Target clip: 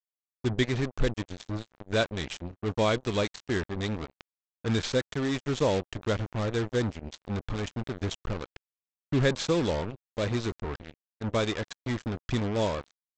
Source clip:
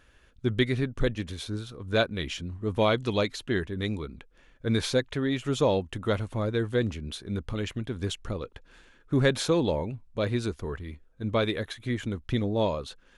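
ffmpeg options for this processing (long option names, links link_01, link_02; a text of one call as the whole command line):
ffmpeg -i in.wav -af "lowshelf=frequency=70:gain=4.5,aresample=16000,acrusher=bits=4:mix=0:aa=0.5,aresample=44100,volume=-2dB" out.wav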